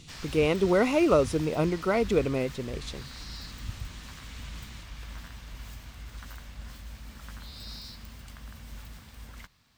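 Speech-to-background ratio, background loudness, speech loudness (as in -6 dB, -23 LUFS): 17.0 dB, -43.0 LUFS, -26.0 LUFS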